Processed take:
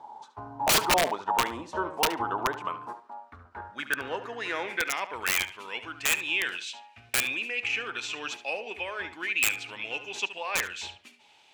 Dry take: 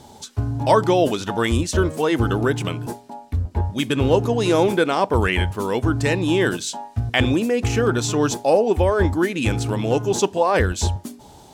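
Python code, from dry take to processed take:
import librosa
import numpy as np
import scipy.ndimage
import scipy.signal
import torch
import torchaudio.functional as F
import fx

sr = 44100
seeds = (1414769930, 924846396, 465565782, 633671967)

y = fx.filter_sweep_bandpass(x, sr, from_hz=930.0, to_hz=2500.0, start_s=2.26, end_s=5.48, q=5.5)
y = (np.mod(10.0 ** (23.0 / 20.0) * y + 1.0, 2.0) - 1.0) / 10.0 ** (23.0 / 20.0)
y = fx.echo_tape(y, sr, ms=72, feedback_pct=21, wet_db=-11, lp_hz=4800.0, drive_db=26.0, wow_cents=8)
y = y * librosa.db_to_amplitude(7.0)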